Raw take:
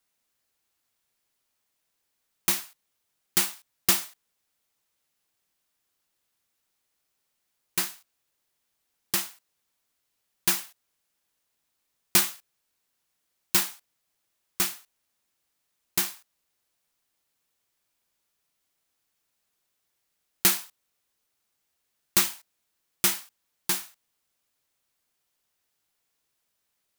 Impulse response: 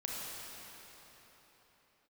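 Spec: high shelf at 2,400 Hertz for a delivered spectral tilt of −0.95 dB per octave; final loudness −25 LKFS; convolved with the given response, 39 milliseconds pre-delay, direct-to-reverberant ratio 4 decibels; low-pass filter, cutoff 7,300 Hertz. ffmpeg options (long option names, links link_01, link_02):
-filter_complex "[0:a]lowpass=7300,highshelf=frequency=2400:gain=7.5,asplit=2[link_01][link_02];[1:a]atrim=start_sample=2205,adelay=39[link_03];[link_02][link_03]afir=irnorm=-1:irlink=0,volume=-6.5dB[link_04];[link_01][link_04]amix=inputs=2:normalize=0,volume=1.5dB"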